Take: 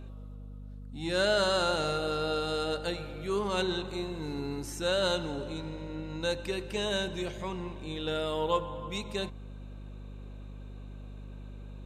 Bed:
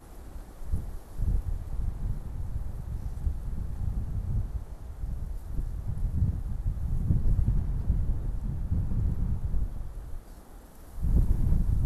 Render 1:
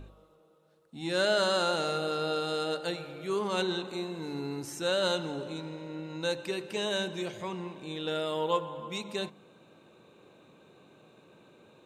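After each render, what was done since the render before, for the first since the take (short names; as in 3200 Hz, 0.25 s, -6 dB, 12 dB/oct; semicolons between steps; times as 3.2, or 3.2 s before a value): de-hum 50 Hz, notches 5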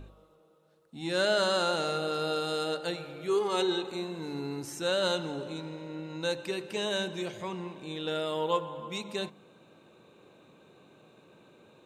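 2.14–2.71 high shelf 9400 Hz +7.5 dB; 3.28–3.91 comb 2.4 ms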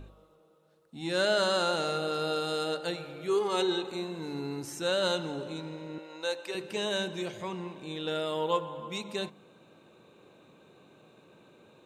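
5.98–6.55 Chebyshev high-pass 530 Hz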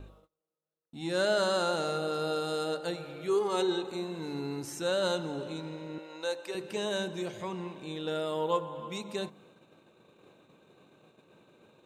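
gate -57 dBFS, range -27 dB; dynamic EQ 2800 Hz, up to -5 dB, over -45 dBFS, Q 0.83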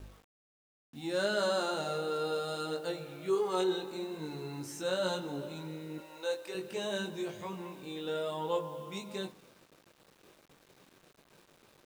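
chorus 0.69 Hz, delay 19.5 ms, depth 2.2 ms; requantised 10-bit, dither none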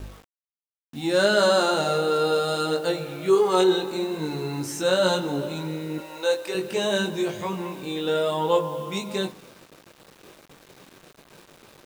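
gain +11.5 dB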